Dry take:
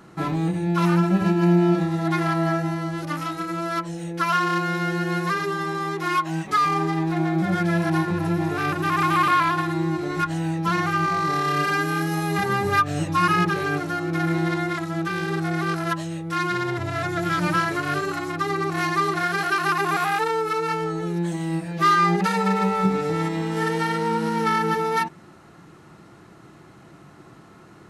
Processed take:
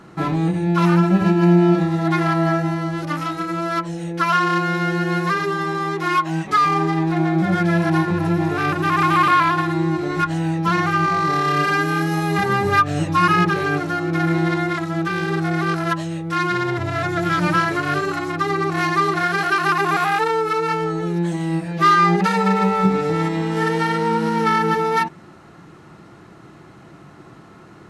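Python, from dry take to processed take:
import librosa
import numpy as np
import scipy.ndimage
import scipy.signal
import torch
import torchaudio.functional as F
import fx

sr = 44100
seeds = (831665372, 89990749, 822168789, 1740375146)

y = fx.high_shelf(x, sr, hz=8400.0, db=-8.5)
y = y * librosa.db_to_amplitude(4.0)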